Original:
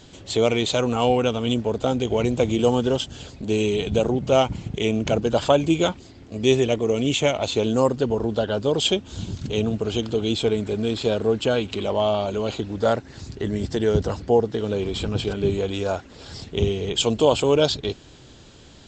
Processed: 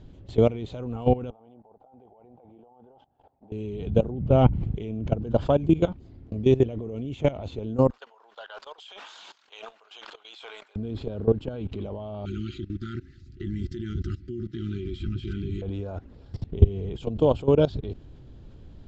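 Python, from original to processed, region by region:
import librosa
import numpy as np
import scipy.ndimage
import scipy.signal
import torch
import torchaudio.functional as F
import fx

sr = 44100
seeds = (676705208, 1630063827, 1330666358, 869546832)

y = fx.chain(x, sr, fx.bandpass_q(hz=800.0, q=8.1),
    fx.over_compress(threshold_db=-41.0, ratio=-1.0), at=(1.3, 3.52))
y = fx.chain(y, sr, fx.bass_treble(bass_db=4, treble_db=-8),
    fx.sustainer(db_per_s=37.0), at=(4.18, 4.64))
y = fx.chain(y, sr, fx.highpass(hz=980.0, slope=24),
    fx.sustainer(db_per_s=37.0), at=(7.9, 10.76))
y = fx.chain(y, sr, fx.brickwall_bandstop(low_hz=390.0, high_hz=1200.0),
    fx.tilt_shelf(db=-5.5, hz=1300.0),
    fx.small_body(hz=(360.0, 830.0, 2000.0, 3200.0), ring_ms=100, db=10), at=(12.25, 15.62))
y = fx.level_steps(y, sr, step_db=18)
y = scipy.signal.sosfilt(scipy.signal.butter(2, 6200.0, 'lowpass', fs=sr, output='sos'), y)
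y = fx.tilt_eq(y, sr, slope=-4.0)
y = y * librosa.db_to_amplitude(-4.0)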